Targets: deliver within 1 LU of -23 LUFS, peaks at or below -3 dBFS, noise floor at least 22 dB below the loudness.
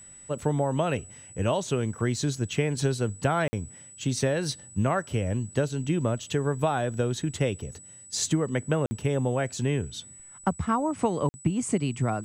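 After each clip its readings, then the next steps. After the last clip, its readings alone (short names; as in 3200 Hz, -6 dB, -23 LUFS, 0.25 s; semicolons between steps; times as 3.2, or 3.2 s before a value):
dropouts 3; longest dropout 50 ms; steady tone 7900 Hz; tone level -46 dBFS; loudness -28.0 LUFS; peak -12.5 dBFS; loudness target -23.0 LUFS
-> interpolate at 3.48/8.86/11.29, 50 ms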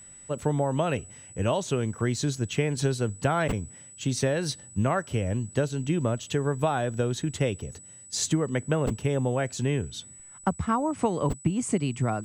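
dropouts 0; steady tone 7900 Hz; tone level -46 dBFS
-> notch 7900 Hz, Q 30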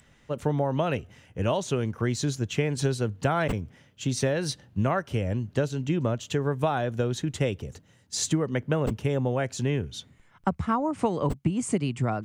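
steady tone none; loudness -28.0 LUFS; peak -12.5 dBFS; loudness target -23.0 LUFS
-> gain +5 dB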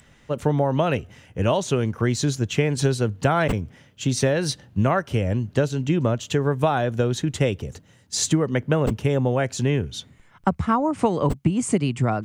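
loudness -23.0 LUFS; peak -7.5 dBFS; noise floor -55 dBFS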